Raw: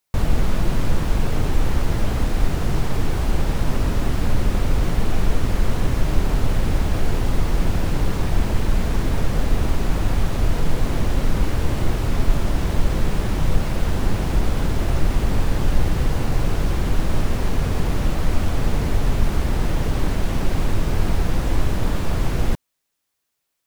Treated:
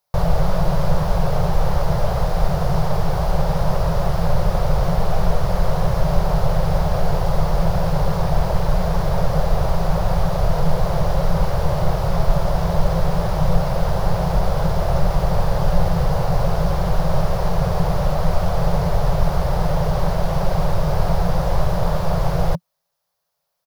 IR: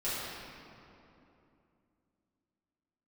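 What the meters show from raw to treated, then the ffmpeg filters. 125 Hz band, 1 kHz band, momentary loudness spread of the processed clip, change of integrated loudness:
+2.5 dB, +7.5 dB, 1 LU, +2.0 dB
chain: -af "firequalizer=gain_entry='entry(110,0);entry(170,10);entry(240,-30);entry(340,-6);entry(560,11);entry(1800,-2);entry(2500,-5);entry(4900,3);entry(7800,-7);entry(11000,0)':delay=0.05:min_phase=1"

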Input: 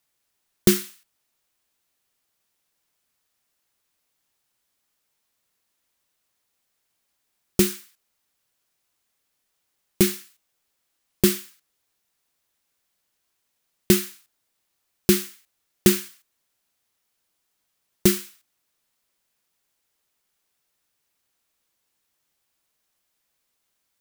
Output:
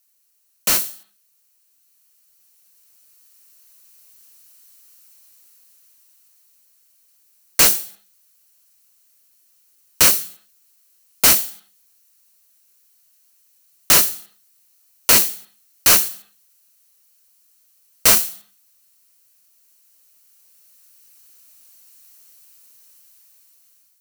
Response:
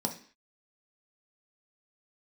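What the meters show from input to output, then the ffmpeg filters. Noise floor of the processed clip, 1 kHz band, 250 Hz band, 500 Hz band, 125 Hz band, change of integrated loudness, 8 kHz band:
-62 dBFS, +15.0 dB, -11.5 dB, -5.0 dB, -8.5 dB, +7.5 dB, +11.5 dB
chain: -filter_complex "[0:a]crystalizer=i=4:c=0,aeval=exprs='(mod(2*val(0)+1,2)-1)/2':c=same,dynaudnorm=f=850:g=5:m=15dB,asplit=2[a][b];[1:a]atrim=start_sample=2205,asetrate=33075,aresample=44100,lowshelf=f=370:g=-10.5[c];[b][c]afir=irnorm=-1:irlink=0,volume=-14.5dB[d];[a][d]amix=inputs=2:normalize=0,volume=-5.5dB"

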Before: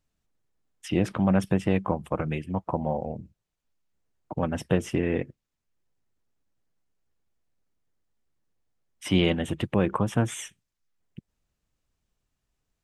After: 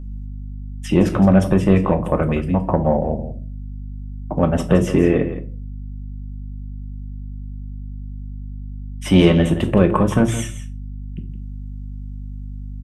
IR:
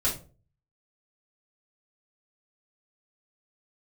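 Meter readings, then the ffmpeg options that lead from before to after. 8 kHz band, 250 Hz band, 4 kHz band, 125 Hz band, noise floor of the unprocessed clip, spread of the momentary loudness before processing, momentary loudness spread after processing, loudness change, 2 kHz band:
+6.0 dB, +10.5 dB, +5.0 dB, +10.5 dB, -83 dBFS, 14 LU, 19 LU, +9.5 dB, +6.0 dB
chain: -filter_complex "[0:a]tiltshelf=f=1.2k:g=3.5,acontrast=84,aeval=exprs='val(0)+0.0251*(sin(2*PI*50*n/s)+sin(2*PI*2*50*n/s)/2+sin(2*PI*3*50*n/s)/3+sin(2*PI*4*50*n/s)/4+sin(2*PI*5*50*n/s)/5)':c=same,aecho=1:1:168:0.251,asplit=2[a][b];[1:a]atrim=start_sample=2205,lowshelf=f=70:g=-9.5,highshelf=f=8.3k:g=6[c];[b][c]afir=irnorm=-1:irlink=0,volume=-13dB[d];[a][d]amix=inputs=2:normalize=0,volume=-1dB"

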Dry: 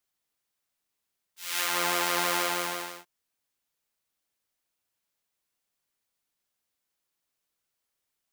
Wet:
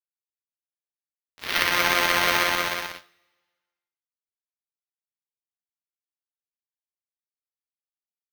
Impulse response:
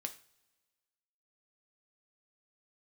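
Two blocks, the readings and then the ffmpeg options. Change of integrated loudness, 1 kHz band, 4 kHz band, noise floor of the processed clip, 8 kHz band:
+6.0 dB, +5.0 dB, +6.5 dB, under -85 dBFS, 0.0 dB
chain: -filter_complex "[0:a]acrusher=samples=6:mix=1:aa=0.000001,equalizer=f=800:t=o:w=0.33:g=-4,equalizer=f=2k:t=o:w=0.33:g=4,equalizer=f=5k:t=o:w=0.33:g=-3,equalizer=f=10k:t=o:w=0.33:g=-11,aeval=exprs='sgn(val(0))*max(abs(val(0))-0.0075,0)':c=same,asplit=2[a][b];[1:a]atrim=start_sample=2205,lowshelf=f=430:g=-9[c];[b][c]afir=irnorm=-1:irlink=0,volume=5.5dB[d];[a][d]amix=inputs=2:normalize=0"

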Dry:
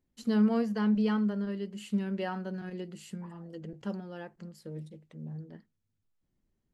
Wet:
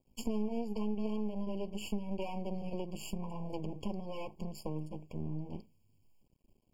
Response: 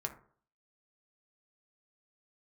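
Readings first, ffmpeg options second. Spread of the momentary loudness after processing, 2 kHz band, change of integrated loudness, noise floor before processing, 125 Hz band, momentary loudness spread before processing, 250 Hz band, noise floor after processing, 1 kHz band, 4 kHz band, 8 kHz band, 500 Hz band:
7 LU, -11.0 dB, -8.0 dB, -81 dBFS, -3.5 dB, 17 LU, -8.0 dB, -72 dBFS, -4.5 dB, -2.0 dB, n/a, -3.5 dB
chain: -af "aeval=exprs='max(val(0),0)':c=same,acompressor=threshold=-47dB:ratio=4,afftfilt=real='re*eq(mod(floor(b*sr/1024/1100),2),0)':imag='im*eq(mod(floor(b*sr/1024/1100),2),0)':win_size=1024:overlap=0.75,volume=13dB"

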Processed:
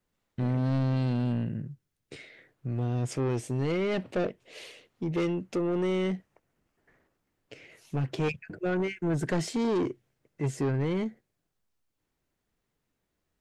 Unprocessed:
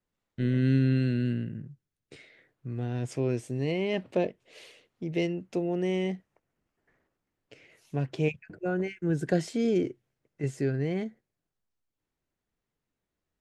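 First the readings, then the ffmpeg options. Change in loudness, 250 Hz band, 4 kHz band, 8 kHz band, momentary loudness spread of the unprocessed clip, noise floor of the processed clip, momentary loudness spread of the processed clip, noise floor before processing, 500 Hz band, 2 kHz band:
-0.5 dB, -0.5 dB, +0.5 dB, +4.0 dB, 12 LU, -81 dBFS, 17 LU, under -85 dBFS, -0.5 dB, 0.0 dB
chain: -af "asoftclip=type=tanh:threshold=-28.5dB,volume=5dB"

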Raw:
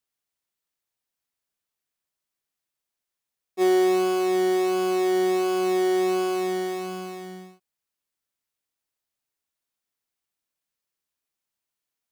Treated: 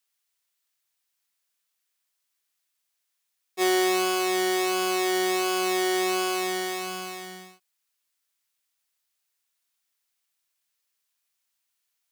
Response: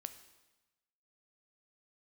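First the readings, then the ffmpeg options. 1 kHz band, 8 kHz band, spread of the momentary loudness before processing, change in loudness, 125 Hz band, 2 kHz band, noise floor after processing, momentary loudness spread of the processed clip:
+0.5 dB, +8.0 dB, 15 LU, -1.5 dB, n/a, +5.5 dB, -79 dBFS, 12 LU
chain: -af "tiltshelf=f=740:g=-8"

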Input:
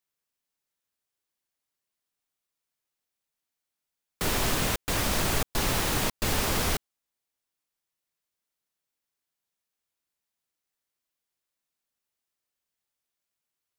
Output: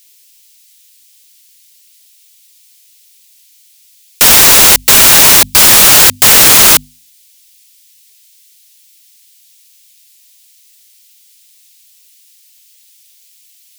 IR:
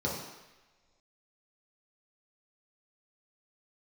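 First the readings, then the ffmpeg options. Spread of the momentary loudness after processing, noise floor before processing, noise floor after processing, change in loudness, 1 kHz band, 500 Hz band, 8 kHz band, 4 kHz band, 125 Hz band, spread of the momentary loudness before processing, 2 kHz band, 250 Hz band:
3 LU, under -85 dBFS, -47 dBFS, +25.0 dB, +17.5 dB, +14.5 dB, +27.0 dB, +23.5 dB, +8.5 dB, 3 LU, +20.5 dB, +12.0 dB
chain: -af "bandreject=f=50:t=h:w=6,bandreject=f=100:t=h:w=6,bandreject=f=150:t=h:w=6,bandreject=f=200:t=h:w=6,bandreject=f=250:t=h:w=6,aexciter=amount=13.9:drive=6.7:freq=2k,aeval=exprs='2.66*sin(PI/2*7.94*val(0)/2.66)':c=same,volume=-9.5dB"

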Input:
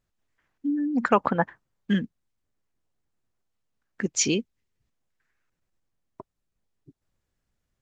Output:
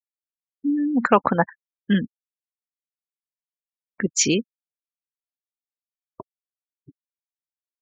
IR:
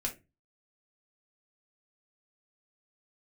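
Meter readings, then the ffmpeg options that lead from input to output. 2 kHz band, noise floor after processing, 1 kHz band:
+4.0 dB, under -85 dBFS, +4.0 dB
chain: -af "afftfilt=real='re*gte(hypot(re,im),0.01)':imag='im*gte(hypot(re,im),0.01)':win_size=1024:overlap=0.75,volume=4dB"

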